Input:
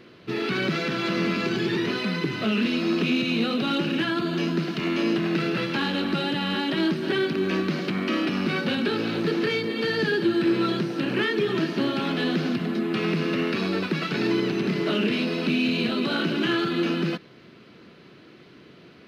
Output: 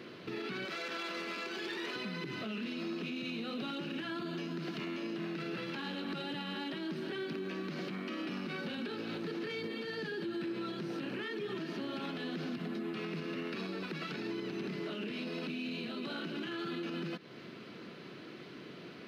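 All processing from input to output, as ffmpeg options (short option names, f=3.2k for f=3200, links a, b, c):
-filter_complex "[0:a]asettb=1/sr,asplit=3[a][b][c];[a]atrim=end=0.654[d];[b]atrim=start=0.65:end=1.96,asetpts=PTS-STARTPTS,afade=t=in:d=0.004:c=qsin,afade=t=out:st=1.306:d=0.004:c=qsin,highpass=470,aeval=exprs='clip(val(0),-1,0.0562)':c=same[e];[c]atrim=start=1.956[f];[d][e]acrossfade=d=0.004:c1=hsin:c2=qsin[g];[g][f]acrossfade=d=0.004:c1=qsin:c2=hsin,highpass=130,acompressor=threshold=-36dB:ratio=2.5,alimiter=level_in=8dB:limit=-24dB:level=0:latency=1:release=109,volume=-8dB,volume=1dB"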